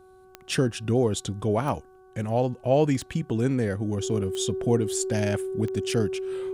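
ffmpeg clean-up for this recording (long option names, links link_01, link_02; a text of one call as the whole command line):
ffmpeg -i in.wav -af "adeclick=threshold=4,bandreject=frequency=374.4:width_type=h:width=4,bandreject=frequency=748.8:width_type=h:width=4,bandreject=frequency=1123.2:width_type=h:width=4,bandreject=frequency=1497.6:width_type=h:width=4,bandreject=frequency=380:width=30" out.wav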